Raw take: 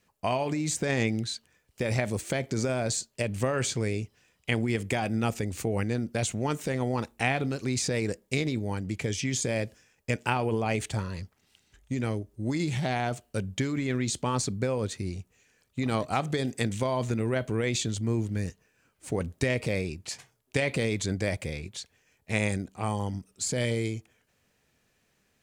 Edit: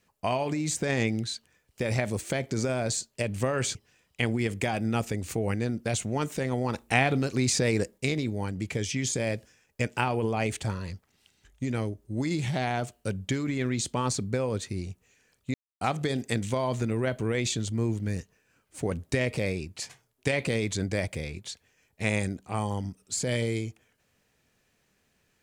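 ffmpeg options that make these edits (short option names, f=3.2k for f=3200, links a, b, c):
-filter_complex "[0:a]asplit=6[a][b][c][d][e][f];[a]atrim=end=3.752[g];[b]atrim=start=4.038:end=7.032[h];[c]atrim=start=7.028:end=8.272,asetpts=PTS-STARTPTS,volume=3.5dB[i];[d]atrim=start=8.268:end=15.83,asetpts=PTS-STARTPTS,afade=t=out:st=7.558:d=0.004:c=hsin[j];[e]atrim=start=15.83:end=16.1,asetpts=PTS-STARTPTS,volume=0[k];[f]atrim=start=16.1,asetpts=PTS-STARTPTS,afade=t=in:d=0.004:c=hsin[l];[g][h]acrossfade=d=0.004:c1=hsin:c2=hsin[m];[m][i]acrossfade=d=0.004:c1=hsin:c2=hsin[n];[j][k][l]concat=n=3:v=0:a=1[o];[n][o]acrossfade=d=0.004:c1=hsin:c2=hsin"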